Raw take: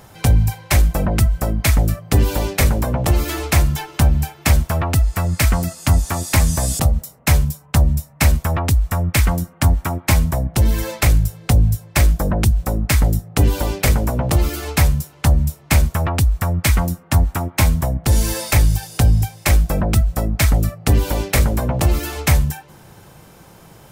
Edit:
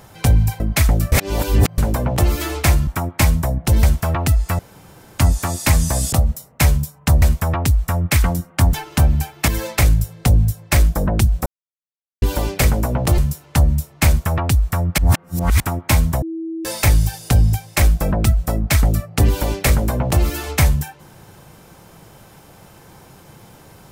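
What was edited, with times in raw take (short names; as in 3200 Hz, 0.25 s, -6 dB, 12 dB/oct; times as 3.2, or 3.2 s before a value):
0.6–1.48 cut
2–2.66 reverse
3.75–4.5 swap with 9.76–10.72
5.26–5.86 room tone
7.89–8.25 cut
12.7–13.46 mute
14.42–14.87 cut
16.67–17.29 reverse
17.91–18.34 bleep 326 Hz -23.5 dBFS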